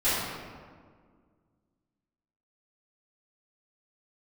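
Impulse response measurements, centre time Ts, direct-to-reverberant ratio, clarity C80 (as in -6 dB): 0.117 s, -17.0 dB, 0.0 dB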